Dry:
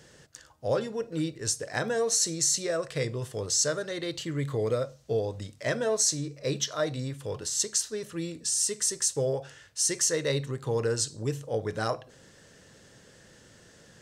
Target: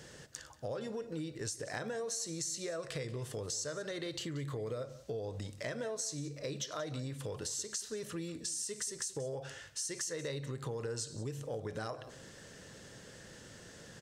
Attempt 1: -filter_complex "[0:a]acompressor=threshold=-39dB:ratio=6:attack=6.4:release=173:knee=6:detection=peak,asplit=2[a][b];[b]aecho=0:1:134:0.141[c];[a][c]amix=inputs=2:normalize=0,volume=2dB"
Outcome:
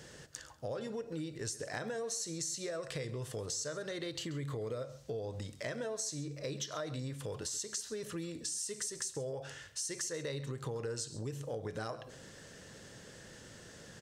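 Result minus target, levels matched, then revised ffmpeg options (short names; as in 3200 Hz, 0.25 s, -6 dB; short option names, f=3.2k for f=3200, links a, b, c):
echo 48 ms early
-filter_complex "[0:a]acompressor=threshold=-39dB:ratio=6:attack=6.4:release=173:knee=6:detection=peak,asplit=2[a][b];[b]aecho=0:1:182:0.141[c];[a][c]amix=inputs=2:normalize=0,volume=2dB"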